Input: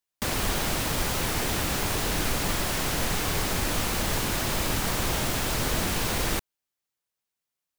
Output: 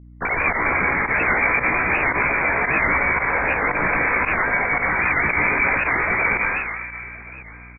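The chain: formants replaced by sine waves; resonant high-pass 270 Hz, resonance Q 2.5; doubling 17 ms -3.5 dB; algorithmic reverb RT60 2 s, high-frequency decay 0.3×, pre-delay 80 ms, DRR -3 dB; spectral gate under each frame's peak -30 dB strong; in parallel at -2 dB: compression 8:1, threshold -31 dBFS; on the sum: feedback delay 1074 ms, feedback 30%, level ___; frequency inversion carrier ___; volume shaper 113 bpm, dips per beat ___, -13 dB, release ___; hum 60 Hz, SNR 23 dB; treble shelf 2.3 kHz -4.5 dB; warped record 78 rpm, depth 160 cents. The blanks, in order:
-21.5 dB, 2.9 kHz, 1, 64 ms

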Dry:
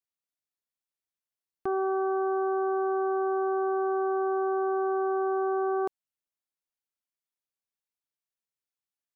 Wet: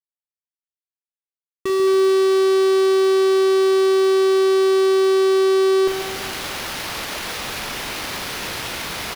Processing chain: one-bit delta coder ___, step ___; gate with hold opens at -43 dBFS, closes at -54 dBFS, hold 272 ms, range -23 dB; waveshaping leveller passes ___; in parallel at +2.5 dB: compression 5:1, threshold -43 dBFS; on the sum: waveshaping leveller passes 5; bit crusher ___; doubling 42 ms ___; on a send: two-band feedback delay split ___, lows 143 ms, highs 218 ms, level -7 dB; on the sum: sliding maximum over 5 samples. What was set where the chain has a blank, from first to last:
64 kbps, -49.5 dBFS, 2, 6-bit, -8 dB, 610 Hz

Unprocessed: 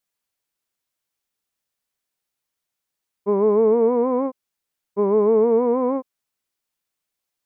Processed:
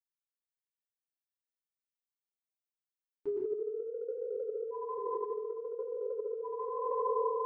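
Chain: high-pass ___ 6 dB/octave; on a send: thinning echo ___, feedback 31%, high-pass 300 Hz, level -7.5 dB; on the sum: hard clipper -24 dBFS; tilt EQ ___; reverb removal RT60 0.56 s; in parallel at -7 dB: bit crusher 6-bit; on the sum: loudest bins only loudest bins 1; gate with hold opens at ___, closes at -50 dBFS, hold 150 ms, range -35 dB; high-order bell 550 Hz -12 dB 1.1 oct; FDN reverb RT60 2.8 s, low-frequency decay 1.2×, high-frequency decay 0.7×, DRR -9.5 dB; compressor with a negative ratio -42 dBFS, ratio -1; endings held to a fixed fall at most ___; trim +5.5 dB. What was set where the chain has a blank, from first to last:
98 Hz, 810 ms, +5.5 dB/octave, -48 dBFS, 340 dB/s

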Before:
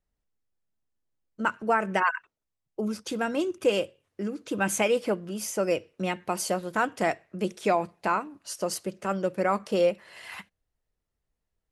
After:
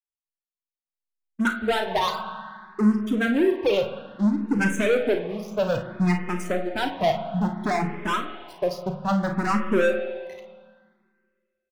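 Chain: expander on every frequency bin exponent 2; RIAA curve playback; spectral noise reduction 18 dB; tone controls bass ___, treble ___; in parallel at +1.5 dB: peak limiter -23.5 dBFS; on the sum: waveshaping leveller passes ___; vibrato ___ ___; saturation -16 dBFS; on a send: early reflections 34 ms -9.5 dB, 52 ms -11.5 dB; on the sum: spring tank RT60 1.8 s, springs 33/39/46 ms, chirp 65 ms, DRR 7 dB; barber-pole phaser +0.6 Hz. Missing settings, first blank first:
-9 dB, -10 dB, 3, 2.1 Hz, 9.9 cents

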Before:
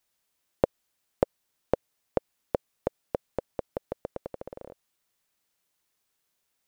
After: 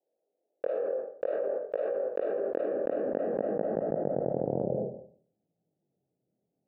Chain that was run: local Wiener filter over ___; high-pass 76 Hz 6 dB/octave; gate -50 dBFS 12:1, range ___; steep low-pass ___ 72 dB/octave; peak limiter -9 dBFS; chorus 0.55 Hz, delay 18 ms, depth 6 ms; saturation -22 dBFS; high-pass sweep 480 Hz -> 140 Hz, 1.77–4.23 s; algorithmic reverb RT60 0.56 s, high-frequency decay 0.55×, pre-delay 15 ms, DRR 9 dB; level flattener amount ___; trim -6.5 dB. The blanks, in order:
41 samples, -20 dB, 850 Hz, 100%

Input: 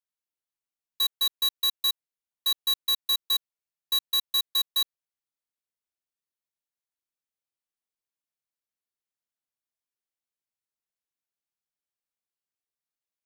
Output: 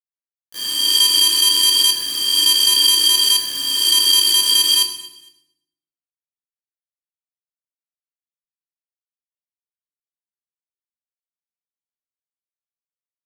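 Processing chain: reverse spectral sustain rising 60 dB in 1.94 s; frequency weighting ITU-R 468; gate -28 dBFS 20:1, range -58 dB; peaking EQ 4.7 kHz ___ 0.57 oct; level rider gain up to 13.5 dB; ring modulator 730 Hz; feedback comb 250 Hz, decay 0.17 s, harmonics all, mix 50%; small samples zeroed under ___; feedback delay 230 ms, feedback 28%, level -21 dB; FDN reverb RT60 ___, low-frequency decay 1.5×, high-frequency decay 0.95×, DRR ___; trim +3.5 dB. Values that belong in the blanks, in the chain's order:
-11.5 dB, -31.5 dBFS, 0.73 s, 4 dB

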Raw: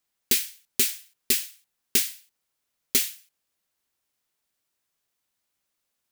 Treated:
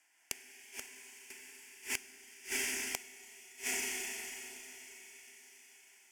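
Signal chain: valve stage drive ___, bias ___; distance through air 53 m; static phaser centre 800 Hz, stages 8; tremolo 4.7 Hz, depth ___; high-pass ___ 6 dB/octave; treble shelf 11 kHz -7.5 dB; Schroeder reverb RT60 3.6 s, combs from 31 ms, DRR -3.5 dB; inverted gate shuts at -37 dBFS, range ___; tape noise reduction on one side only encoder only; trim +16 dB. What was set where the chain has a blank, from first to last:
16 dB, 0.8, 45%, 580 Hz, -29 dB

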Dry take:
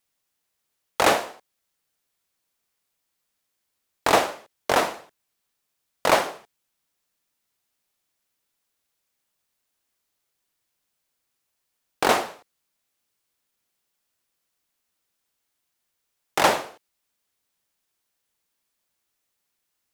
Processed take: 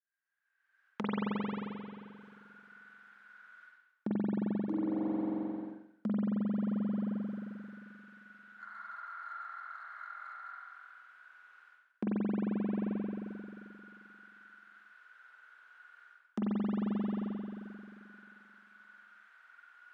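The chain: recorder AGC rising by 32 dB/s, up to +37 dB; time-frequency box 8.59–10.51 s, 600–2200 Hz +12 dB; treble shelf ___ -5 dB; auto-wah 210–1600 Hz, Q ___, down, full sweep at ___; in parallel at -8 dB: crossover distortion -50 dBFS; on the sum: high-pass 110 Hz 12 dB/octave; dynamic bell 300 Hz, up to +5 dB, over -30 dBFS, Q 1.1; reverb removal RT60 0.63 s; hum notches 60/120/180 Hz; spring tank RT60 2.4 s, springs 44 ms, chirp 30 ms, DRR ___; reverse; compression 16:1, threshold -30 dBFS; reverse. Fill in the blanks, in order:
9.3 kHz, 21, -12.5 dBFS, -7 dB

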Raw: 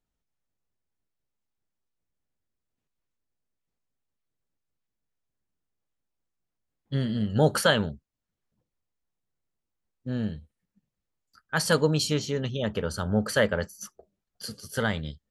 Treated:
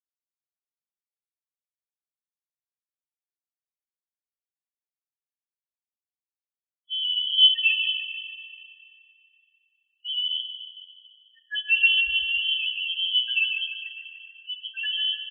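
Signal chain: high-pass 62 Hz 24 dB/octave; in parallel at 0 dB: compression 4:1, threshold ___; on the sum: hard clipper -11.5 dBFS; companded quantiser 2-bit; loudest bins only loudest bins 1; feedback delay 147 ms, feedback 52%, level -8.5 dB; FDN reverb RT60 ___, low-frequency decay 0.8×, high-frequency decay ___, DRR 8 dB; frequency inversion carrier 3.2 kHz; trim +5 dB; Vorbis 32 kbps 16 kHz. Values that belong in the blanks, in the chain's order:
-33 dBFS, 2.9 s, 0.65×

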